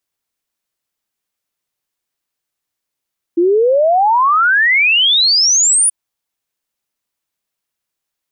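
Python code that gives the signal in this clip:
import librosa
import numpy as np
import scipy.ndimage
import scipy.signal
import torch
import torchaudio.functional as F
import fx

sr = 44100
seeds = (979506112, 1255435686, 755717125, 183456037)

y = fx.ess(sr, length_s=2.53, from_hz=330.0, to_hz=10000.0, level_db=-8.5)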